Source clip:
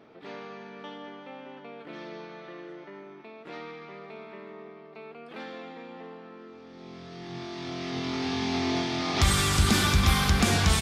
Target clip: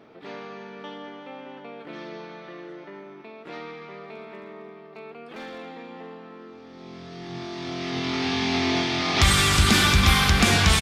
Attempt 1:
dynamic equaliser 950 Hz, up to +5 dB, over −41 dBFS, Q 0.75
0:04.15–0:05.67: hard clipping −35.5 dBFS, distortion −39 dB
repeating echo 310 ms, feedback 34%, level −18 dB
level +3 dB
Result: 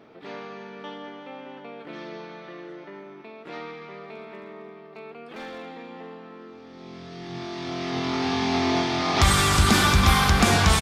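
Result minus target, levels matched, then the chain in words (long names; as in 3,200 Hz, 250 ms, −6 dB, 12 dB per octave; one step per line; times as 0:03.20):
1,000 Hz band +3.5 dB
dynamic equaliser 2,500 Hz, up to +5 dB, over −41 dBFS, Q 0.75
0:04.15–0:05.67: hard clipping −35.5 dBFS, distortion −41 dB
repeating echo 310 ms, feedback 34%, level −18 dB
level +3 dB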